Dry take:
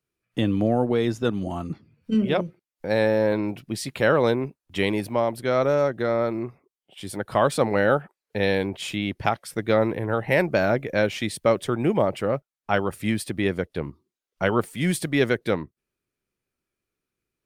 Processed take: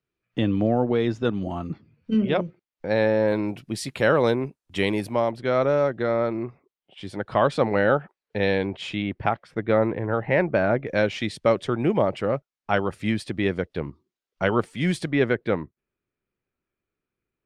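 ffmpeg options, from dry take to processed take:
-af "asetnsamples=n=441:p=0,asendcmd='3.28 lowpass f 11000;5.31 lowpass f 4200;9.02 lowpass f 2300;10.87 lowpass f 5600;15.11 lowpass f 2600',lowpass=4.2k"

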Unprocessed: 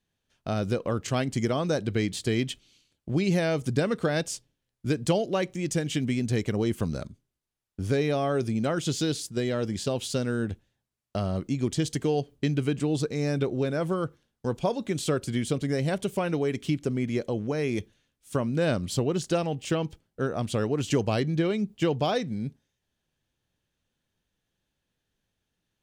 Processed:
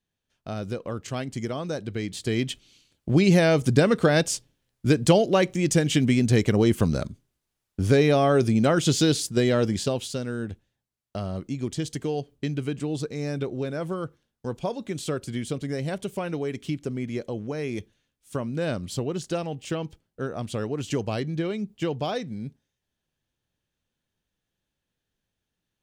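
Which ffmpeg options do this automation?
-af "volume=6.5dB,afade=t=in:st=2.02:d=1.09:silence=0.298538,afade=t=out:st=9.59:d=0.54:silence=0.354813"

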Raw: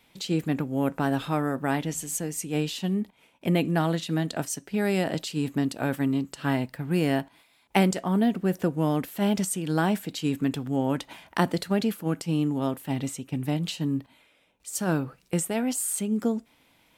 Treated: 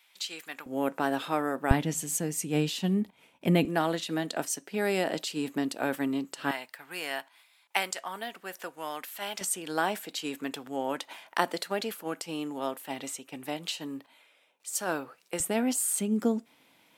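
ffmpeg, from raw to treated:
-af "asetnsamples=n=441:p=0,asendcmd='0.66 highpass f 340;1.71 highpass f 86;3.65 highpass f 310;6.51 highpass f 1000;9.41 highpass f 490;15.4 highpass f 170',highpass=1.2k"

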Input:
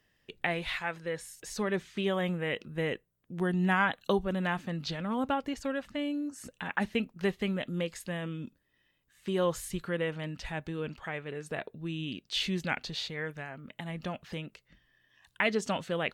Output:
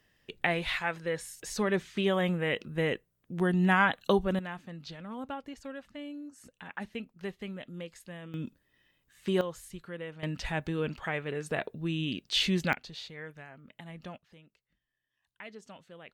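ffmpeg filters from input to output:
-af "asetnsamples=n=441:p=0,asendcmd='4.39 volume volume -8.5dB;8.34 volume volume 3dB;9.41 volume volume -8.5dB;10.23 volume volume 4dB;12.73 volume volume -7dB;14.18 volume volume -18dB',volume=2.5dB"

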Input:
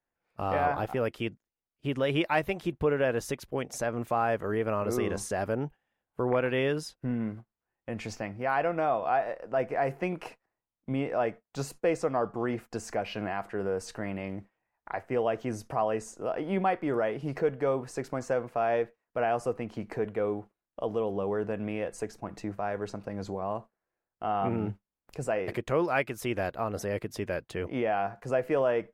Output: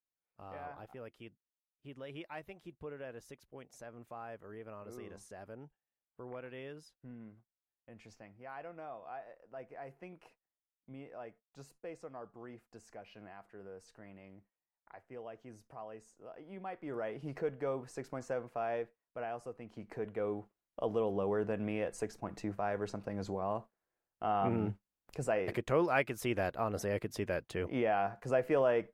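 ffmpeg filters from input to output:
-af "volume=3.5dB,afade=t=in:st=16.59:d=0.61:silence=0.298538,afade=t=out:st=18.58:d=0.96:silence=0.473151,afade=t=in:st=19.54:d=1.26:silence=0.251189"

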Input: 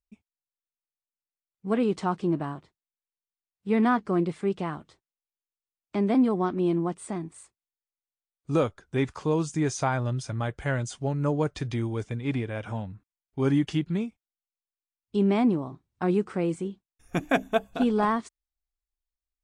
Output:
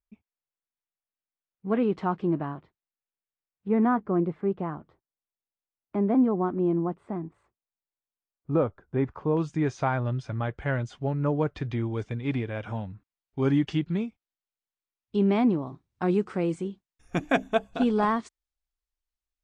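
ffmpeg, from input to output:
-af "asetnsamples=n=441:p=0,asendcmd='3.68 lowpass f 1300;9.37 lowpass f 2900;11.93 lowpass f 4700;15.67 lowpass f 7400',lowpass=2.5k"

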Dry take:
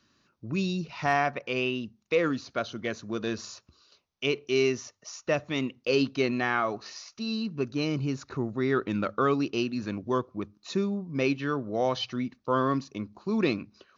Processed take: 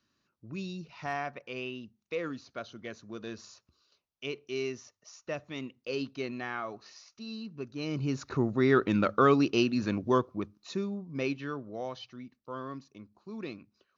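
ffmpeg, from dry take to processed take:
-af "volume=2.5dB,afade=t=in:st=7.76:d=0.61:silence=0.251189,afade=t=out:st=10.07:d=0.68:silence=0.398107,afade=t=out:st=11.25:d=0.81:silence=0.375837"

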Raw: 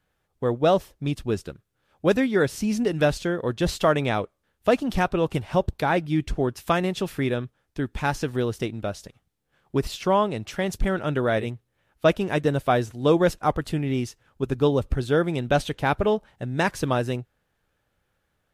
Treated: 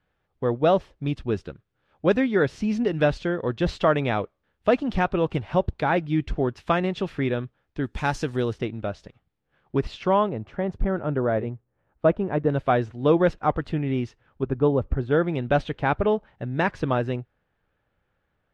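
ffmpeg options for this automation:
-af "asetnsamples=n=441:p=0,asendcmd='7.84 lowpass f 7500;8.53 lowpass f 3000;10.29 lowpass f 1200;12.5 lowpass f 2700;14.43 lowpass f 1500;15.11 lowpass f 2700',lowpass=3.4k"

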